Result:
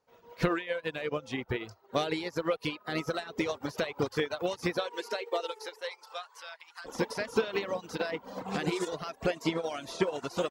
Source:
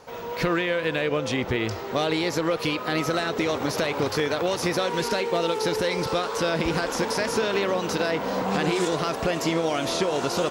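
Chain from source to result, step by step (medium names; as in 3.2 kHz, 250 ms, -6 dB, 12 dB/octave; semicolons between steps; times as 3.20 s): 4.80–6.84 s: high-pass 250 Hz -> 1 kHz 24 dB/octave; reverb removal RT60 1.1 s; upward expansion 2.5:1, over -40 dBFS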